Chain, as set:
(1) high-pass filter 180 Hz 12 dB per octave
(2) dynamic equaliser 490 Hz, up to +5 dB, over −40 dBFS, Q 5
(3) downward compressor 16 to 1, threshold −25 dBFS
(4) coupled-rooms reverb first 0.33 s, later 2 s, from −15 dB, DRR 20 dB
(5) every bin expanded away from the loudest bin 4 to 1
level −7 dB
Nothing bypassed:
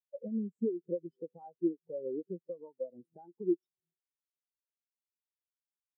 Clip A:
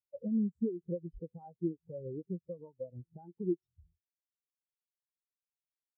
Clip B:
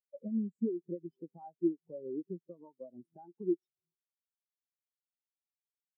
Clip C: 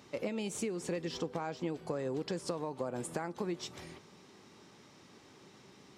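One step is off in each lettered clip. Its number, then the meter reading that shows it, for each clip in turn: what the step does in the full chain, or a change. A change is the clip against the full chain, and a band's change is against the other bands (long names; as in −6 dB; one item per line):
1, change in momentary loudness spread +2 LU
2, change in momentary loudness spread +3 LU
5, change in momentary loudness spread +8 LU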